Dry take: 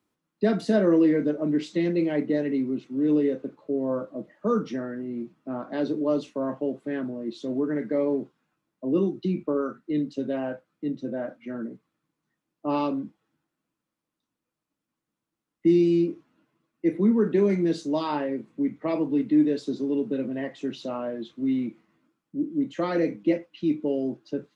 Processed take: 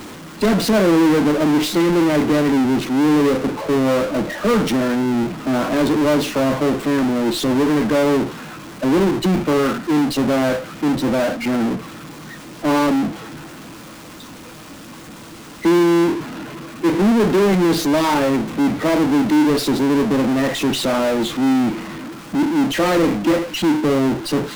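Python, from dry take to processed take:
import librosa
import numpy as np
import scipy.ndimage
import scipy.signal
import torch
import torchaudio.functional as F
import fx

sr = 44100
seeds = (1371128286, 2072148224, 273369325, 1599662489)

y = fx.power_curve(x, sr, exponent=0.35)
y = fx.running_max(y, sr, window=3)
y = F.gain(torch.from_numpy(y), 1.5).numpy()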